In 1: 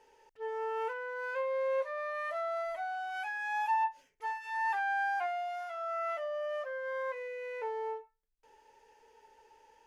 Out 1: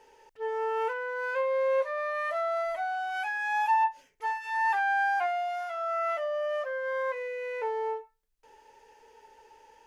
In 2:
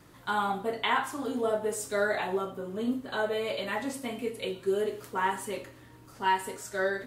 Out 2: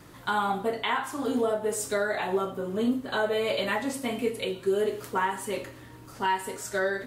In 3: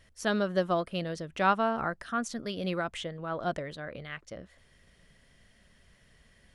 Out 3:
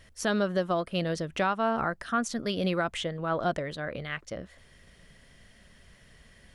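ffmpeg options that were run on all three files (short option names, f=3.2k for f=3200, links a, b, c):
-af "alimiter=limit=-22.5dB:level=0:latency=1:release=389,volume=5.5dB"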